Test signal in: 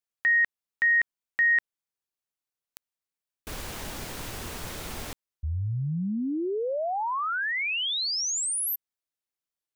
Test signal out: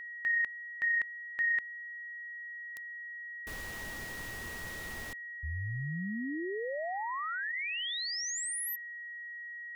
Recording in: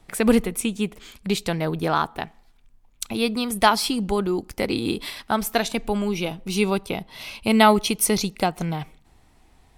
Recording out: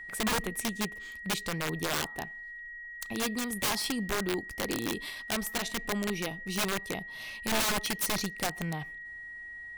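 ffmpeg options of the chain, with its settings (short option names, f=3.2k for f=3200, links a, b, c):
-af "aeval=exprs='val(0)+0.0224*sin(2*PI*1900*n/s)':c=same,aeval=exprs='(mod(5.62*val(0)+1,2)-1)/5.62':c=same,volume=-8dB"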